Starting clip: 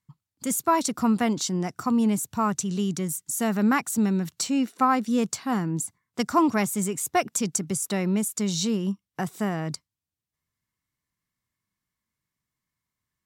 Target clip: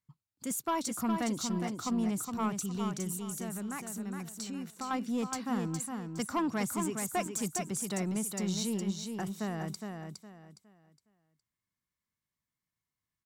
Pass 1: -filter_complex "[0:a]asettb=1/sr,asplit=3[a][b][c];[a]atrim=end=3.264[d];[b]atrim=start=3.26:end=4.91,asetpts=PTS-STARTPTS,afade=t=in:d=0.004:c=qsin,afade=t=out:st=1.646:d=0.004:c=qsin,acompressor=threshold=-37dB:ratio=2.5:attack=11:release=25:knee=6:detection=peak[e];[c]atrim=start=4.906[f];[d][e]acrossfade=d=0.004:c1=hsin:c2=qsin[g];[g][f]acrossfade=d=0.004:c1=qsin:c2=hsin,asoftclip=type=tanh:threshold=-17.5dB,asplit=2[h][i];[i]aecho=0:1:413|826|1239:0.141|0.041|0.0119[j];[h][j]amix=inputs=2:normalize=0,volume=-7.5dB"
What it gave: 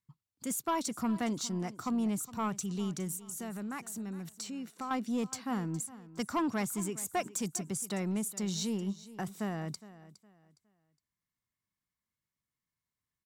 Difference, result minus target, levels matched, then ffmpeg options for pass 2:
echo-to-direct -11.5 dB
-filter_complex "[0:a]asettb=1/sr,asplit=3[a][b][c];[a]atrim=end=3.264[d];[b]atrim=start=3.26:end=4.91,asetpts=PTS-STARTPTS,afade=t=in:d=0.004:c=qsin,afade=t=out:st=1.646:d=0.004:c=qsin,acompressor=threshold=-37dB:ratio=2.5:attack=11:release=25:knee=6:detection=peak[e];[c]atrim=start=4.906[f];[d][e]acrossfade=d=0.004:c1=hsin:c2=qsin[g];[g][f]acrossfade=d=0.004:c1=qsin:c2=hsin,asoftclip=type=tanh:threshold=-17.5dB,asplit=2[h][i];[i]aecho=0:1:413|826|1239|1652:0.531|0.154|0.0446|0.0129[j];[h][j]amix=inputs=2:normalize=0,volume=-7.5dB"

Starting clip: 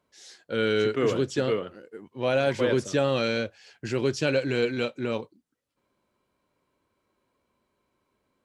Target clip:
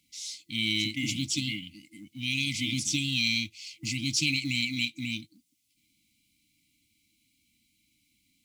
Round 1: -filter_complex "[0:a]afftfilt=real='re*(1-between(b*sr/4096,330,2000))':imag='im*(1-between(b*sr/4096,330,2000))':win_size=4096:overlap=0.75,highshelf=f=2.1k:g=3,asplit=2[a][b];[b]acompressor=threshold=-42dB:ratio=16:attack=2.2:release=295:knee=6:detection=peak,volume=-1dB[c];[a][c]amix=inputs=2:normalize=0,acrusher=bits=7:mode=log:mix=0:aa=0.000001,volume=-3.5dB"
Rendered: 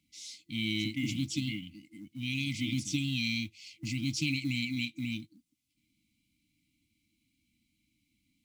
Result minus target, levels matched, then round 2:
4000 Hz band -3.0 dB
-filter_complex "[0:a]afftfilt=real='re*(1-between(b*sr/4096,330,2000))':imag='im*(1-between(b*sr/4096,330,2000))':win_size=4096:overlap=0.75,highshelf=f=2.1k:g=14,asplit=2[a][b];[b]acompressor=threshold=-42dB:ratio=16:attack=2.2:release=295:knee=6:detection=peak,volume=-1dB[c];[a][c]amix=inputs=2:normalize=0,acrusher=bits=7:mode=log:mix=0:aa=0.000001,volume=-3.5dB"

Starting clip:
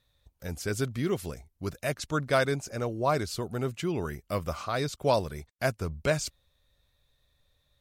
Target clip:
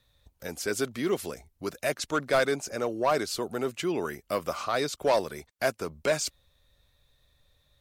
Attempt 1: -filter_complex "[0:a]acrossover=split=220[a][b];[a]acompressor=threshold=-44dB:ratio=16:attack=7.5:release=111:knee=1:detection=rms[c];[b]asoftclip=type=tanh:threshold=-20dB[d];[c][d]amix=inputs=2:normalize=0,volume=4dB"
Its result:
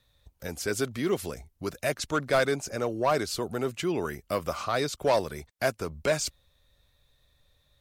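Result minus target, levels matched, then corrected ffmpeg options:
compressor: peak gain reduction -9 dB
-filter_complex "[0:a]acrossover=split=220[a][b];[a]acompressor=threshold=-53.5dB:ratio=16:attack=7.5:release=111:knee=1:detection=rms[c];[b]asoftclip=type=tanh:threshold=-20dB[d];[c][d]amix=inputs=2:normalize=0,volume=4dB"

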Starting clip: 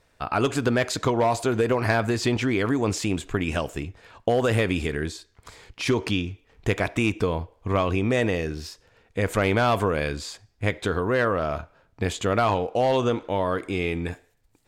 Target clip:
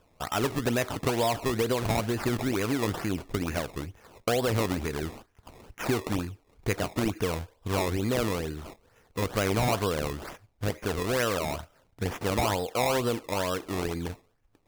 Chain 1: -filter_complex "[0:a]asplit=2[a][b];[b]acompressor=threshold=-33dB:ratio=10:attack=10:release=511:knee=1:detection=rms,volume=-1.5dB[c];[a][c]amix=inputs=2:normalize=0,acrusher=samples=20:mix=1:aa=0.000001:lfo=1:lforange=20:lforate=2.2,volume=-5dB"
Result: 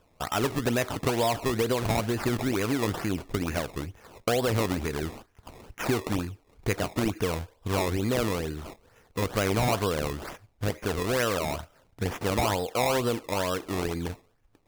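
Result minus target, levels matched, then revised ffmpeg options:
compressor: peak gain reduction -10 dB
-filter_complex "[0:a]asplit=2[a][b];[b]acompressor=threshold=-44dB:ratio=10:attack=10:release=511:knee=1:detection=rms,volume=-1.5dB[c];[a][c]amix=inputs=2:normalize=0,acrusher=samples=20:mix=1:aa=0.000001:lfo=1:lforange=20:lforate=2.2,volume=-5dB"

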